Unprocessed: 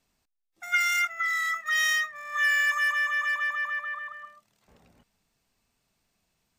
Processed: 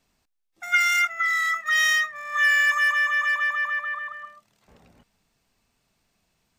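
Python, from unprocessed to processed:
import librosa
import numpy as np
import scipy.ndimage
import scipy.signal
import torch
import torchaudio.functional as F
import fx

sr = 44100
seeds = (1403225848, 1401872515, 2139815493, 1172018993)

y = fx.high_shelf(x, sr, hz=7400.0, db=-4.0)
y = F.gain(torch.from_numpy(y), 4.5).numpy()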